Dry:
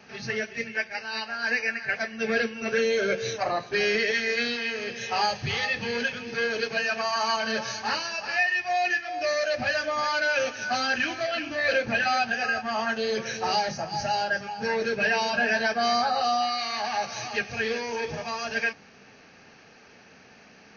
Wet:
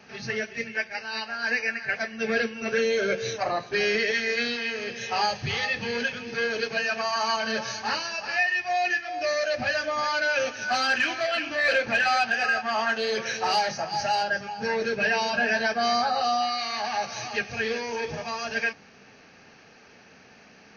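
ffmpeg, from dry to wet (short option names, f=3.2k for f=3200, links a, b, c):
-filter_complex "[0:a]asettb=1/sr,asplit=3[a][b][c];[a]atrim=end=10.684[d];[b]atrim=start=10.68:end=14.23,asetpts=PTS-STARTPTS,afade=t=in:d=0.004:c=qsin,afade=t=out:st=3.546:d=0.004:c=qsin,asplit=2[e][f];[f]highpass=f=720:p=1,volume=8dB,asoftclip=type=tanh:threshold=-13dB[g];[e][g]amix=inputs=2:normalize=0,lowpass=f=5.6k:p=1,volume=-6dB[h];[c]atrim=start=14.226[i];[d][h]acrossfade=d=0.004:c1=hsin:c2=qsin[j];[j][i]acrossfade=d=0.004:c1=qsin:c2=hsin"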